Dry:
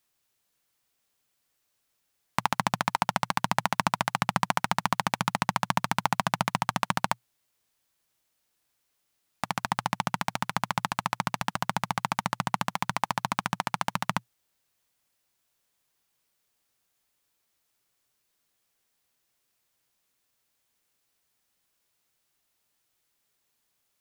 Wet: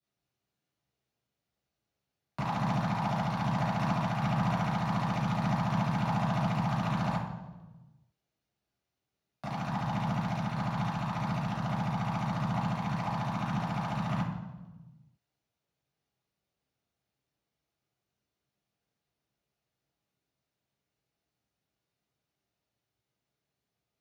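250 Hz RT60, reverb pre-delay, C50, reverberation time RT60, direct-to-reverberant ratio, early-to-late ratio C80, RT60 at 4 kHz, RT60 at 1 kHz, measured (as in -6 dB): 1.5 s, 3 ms, 2.5 dB, 1.2 s, -13.0 dB, 5.0 dB, 0.90 s, 1.0 s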